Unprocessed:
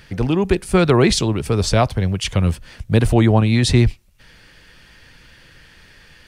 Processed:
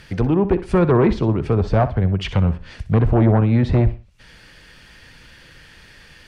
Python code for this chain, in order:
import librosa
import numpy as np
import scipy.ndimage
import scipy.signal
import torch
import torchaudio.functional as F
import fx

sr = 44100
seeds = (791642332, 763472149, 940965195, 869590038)

p1 = fx.cheby_harmonics(x, sr, harmonics=(5, 7), levels_db=(-11, -22), full_scale_db=-2.0)
p2 = fx.env_lowpass_down(p1, sr, base_hz=1300.0, full_db=-10.5)
p3 = p2 + fx.echo_feedback(p2, sr, ms=62, feedback_pct=28, wet_db=-14.0, dry=0)
y = F.gain(torch.from_numpy(p3), -4.0).numpy()